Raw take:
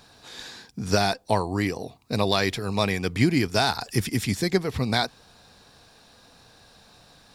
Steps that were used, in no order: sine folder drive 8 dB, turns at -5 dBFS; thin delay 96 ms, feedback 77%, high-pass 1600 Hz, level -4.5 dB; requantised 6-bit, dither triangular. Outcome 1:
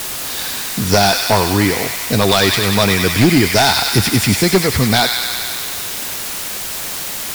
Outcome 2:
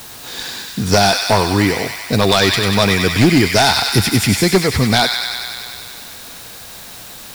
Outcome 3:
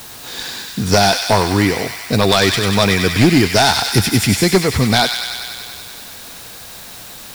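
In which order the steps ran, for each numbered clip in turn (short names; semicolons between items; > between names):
thin delay > requantised > sine folder; thin delay > sine folder > requantised; sine folder > thin delay > requantised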